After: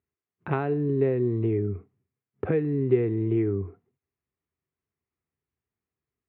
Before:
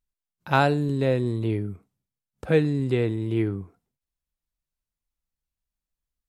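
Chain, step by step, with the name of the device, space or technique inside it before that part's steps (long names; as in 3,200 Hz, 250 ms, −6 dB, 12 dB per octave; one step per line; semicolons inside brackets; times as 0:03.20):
bass amplifier (downward compressor 5 to 1, threshold −31 dBFS, peak gain reduction 15 dB; loudspeaker in its box 89–2,100 Hz, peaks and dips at 89 Hz +5 dB, 180 Hz −4 dB, 400 Hz +10 dB, 570 Hz −8 dB, 890 Hz −6 dB, 1,500 Hz −6 dB)
level +7.5 dB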